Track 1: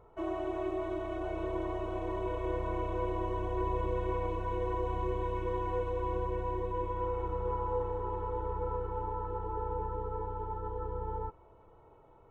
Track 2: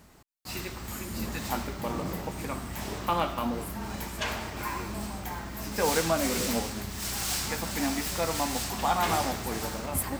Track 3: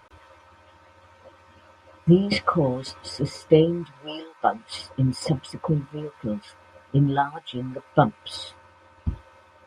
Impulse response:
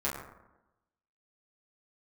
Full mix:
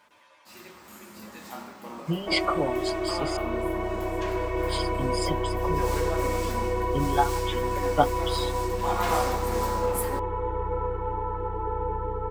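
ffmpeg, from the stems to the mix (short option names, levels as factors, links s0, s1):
-filter_complex "[0:a]equalizer=f=2100:t=o:w=0.47:g=9,adelay=2100,volume=1.26[s0];[1:a]highpass=220,equalizer=f=1200:t=o:w=0.44:g=2.5,volume=0.299,afade=t=in:st=8.69:d=0.43:silence=0.421697,asplit=2[s1][s2];[s2]volume=0.631[s3];[2:a]highpass=f=940:p=1,bandreject=f=1300:w=12,aecho=1:1:6.9:0.89,volume=0.562,asplit=3[s4][s5][s6];[s4]atrim=end=3.37,asetpts=PTS-STARTPTS,afade=t=out:st=3.366:d=0.004:c=hsin[s7];[s5]atrim=start=3.37:end=4.59,asetpts=PTS-STARTPTS,volume=0[s8];[s6]atrim=start=4.59,asetpts=PTS-STARTPTS,afade=t=in:d=0.004:c=hsin[s9];[s7][s8][s9]concat=n=3:v=0:a=1[s10];[3:a]atrim=start_sample=2205[s11];[s3][s11]afir=irnorm=-1:irlink=0[s12];[s0][s1][s10][s12]amix=inputs=4:normalize=0,dynaudnorm=f=120:g=9:m=1.58"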